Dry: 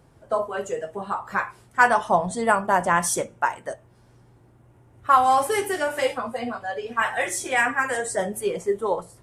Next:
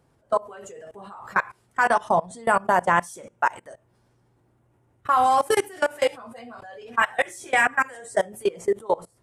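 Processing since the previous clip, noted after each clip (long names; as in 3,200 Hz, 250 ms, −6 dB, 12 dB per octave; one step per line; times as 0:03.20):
low-shelf EQ 100 Hz −5 dB
output level in coarse steps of 23 dB
level +5 dB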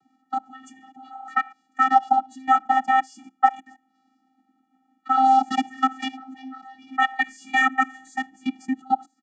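comb filter 2.1 ms, depth 67%
channel vocoder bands 16, square 262 Hz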